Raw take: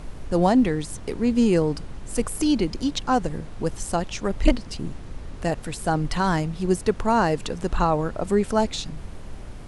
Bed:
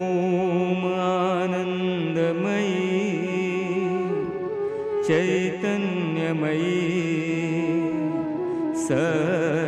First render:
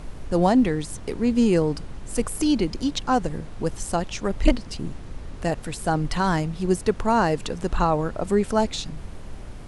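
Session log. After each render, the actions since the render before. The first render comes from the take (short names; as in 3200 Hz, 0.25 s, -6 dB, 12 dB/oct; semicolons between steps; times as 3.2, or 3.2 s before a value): nothing audible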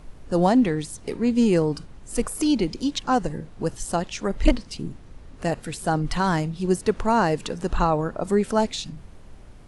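noise print and reduce 8 dB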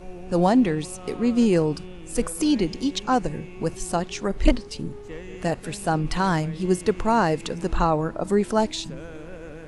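add bed -17.5 dB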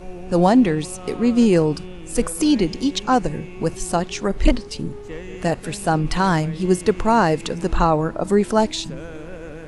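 gain +4 dB; limiter -3 dBFS, peak gain reduction 3 dB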